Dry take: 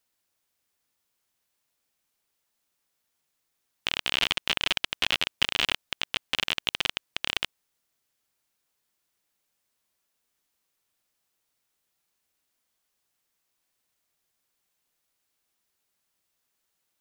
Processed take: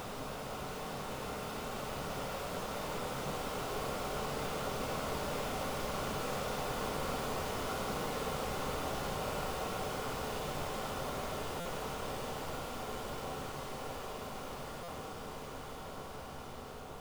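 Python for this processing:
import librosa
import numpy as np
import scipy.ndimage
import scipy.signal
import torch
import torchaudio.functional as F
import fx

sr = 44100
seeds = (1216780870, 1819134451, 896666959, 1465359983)

y = fx.spec_paint(x, sr, seeds[0], shape='noise', start_s=9.16, length_s=0.23, low_hz=380.0, high_hz=1500.0, level_db=-25.0)
y = fx.schmitt(y, sr, flips_db=-26.0)
y = fx.echo_split(y, sr, split_hz=1500.0, low_ms=173, high_ms=101, feedback_pct=52, wet_db=-8.5)
y = fx.paulstretch(y, sr, seeds[1], factor=25.0, window_s=1.0, from_s=9.02)
y = fx.buffer_glitch(y, sr, at_s=(11.6, 14.83), block=256, repeats=8)
y = y * librosa.db_to_amplitude(1.0)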